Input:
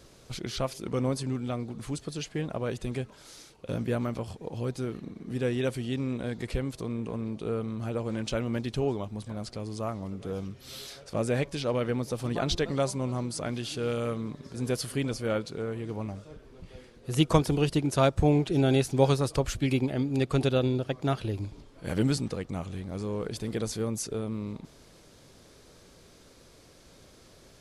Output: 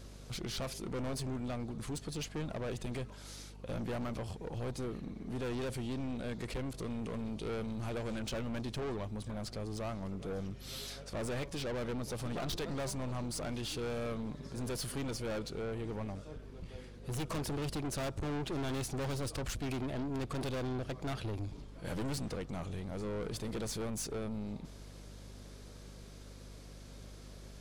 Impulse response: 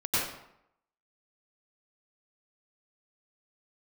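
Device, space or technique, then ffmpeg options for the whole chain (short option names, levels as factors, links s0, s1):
valve amplifier with mains hum: -filter_complex "[0:a]aeval=exprs='(tanh(56.2*val(0)+0.3)-tanh(0.3))/56.2':c=same,aeval=exprs='val(0)+0.00316*(sin(2*PI*50*n/s)+sin(2*PI*2*50*n/s)/2+sin(2*PI*3*50*n/s)/3+sin(2*PI*4*50*n/s)/4+sin(2*PI*5*50*n/s)/5)':c=same,asettb=1/sr,asplit=3[s0][s1][s2];[s0]atrim=end=6.734[s3];[s1]atrim=start=6.73:end=8.19,asetpts=PTS-STARTPTS,afade=t=in:d=0.004:c=qsin,afade=t=out:st=1.456:d=0.004:c=qsin,adynamicequalizer=threshold=0.002:dfrequency=1900:dqfactor=0.7:tfrequency=1900:tqfactor=0.7:attack=5:release=100:ratio=0.375:range=2.5:mode=boostabove:tftype=highshelf[s4];[s2]atrim=start=8.186[s5];[s3][s4]acrossfade=d=0.004:c1=hsin:c2=qsin[s6];[s6][s5]acrossfade=d=0.004:c1=qsin:c2=hsin"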